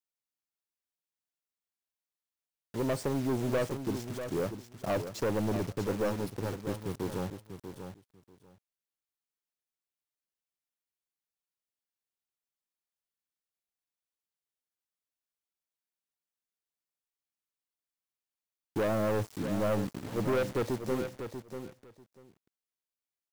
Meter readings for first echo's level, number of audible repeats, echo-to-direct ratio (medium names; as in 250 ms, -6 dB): -9.0 dB, 2, -9.0 dB